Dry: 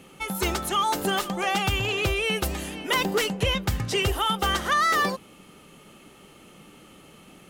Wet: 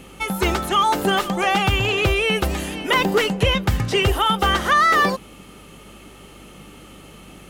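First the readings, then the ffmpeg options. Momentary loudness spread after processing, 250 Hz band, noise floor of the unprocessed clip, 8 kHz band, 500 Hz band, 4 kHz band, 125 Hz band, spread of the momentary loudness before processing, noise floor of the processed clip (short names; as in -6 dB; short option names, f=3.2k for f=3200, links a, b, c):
6 LU, +6.5 dB, -51 dBFS, +0.5 dB, +6.5 dB, +4.5 dB, +6.5 dB, 6 LU, -44 dBFS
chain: -filter_complex "[0:a]acrossover=split=3400[a][b];[b]acompressor=threshold=-38dB:ratio=4:attack=1:release=60[c];[a][c]amix=inputs=2:normalize=0,aeval=exprs='val(0)+0.00178*(sin(2*PI*50*n/s)+sin(2*PI*2*50*n/s)/2+sin(2*PI*3*50*n/s)/3+sin(2*PI*4*50*n/s)/4+sin(2*PI*5*50*n/s)/5)':c=same,volume=6.5dB"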